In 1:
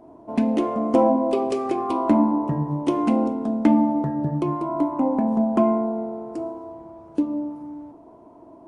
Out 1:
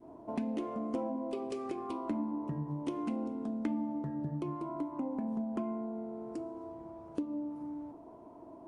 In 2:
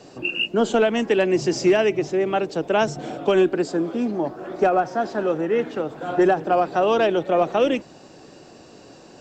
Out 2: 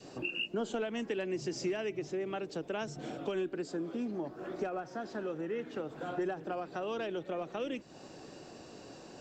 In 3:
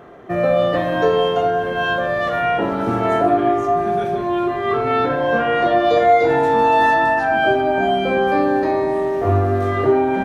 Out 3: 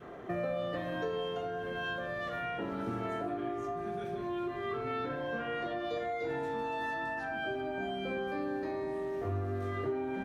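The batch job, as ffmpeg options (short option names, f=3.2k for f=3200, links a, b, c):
-af "acompressor=threshold=-32dB:ratio=2.5,adynamicequalizer=threshold=0.00708:dfrequency=760:dqfactor=1.2:tfrequency=760:tqfactor=1.2:attack=5:release=100:ratio=0.375:range=3:mode=cutabove:tftype=bell,volume=-4.5dB"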